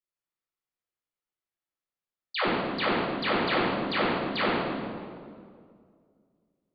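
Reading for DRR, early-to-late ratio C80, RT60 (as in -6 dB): -10.0 dB, 0.0 dB, 2.2 s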